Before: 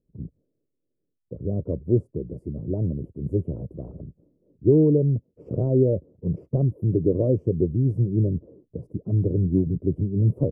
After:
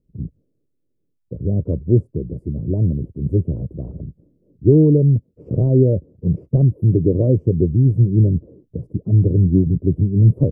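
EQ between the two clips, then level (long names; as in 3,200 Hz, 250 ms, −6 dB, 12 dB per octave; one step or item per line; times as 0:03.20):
low-shelf EQ 330 Hz +10.5 dB
−1.0 dB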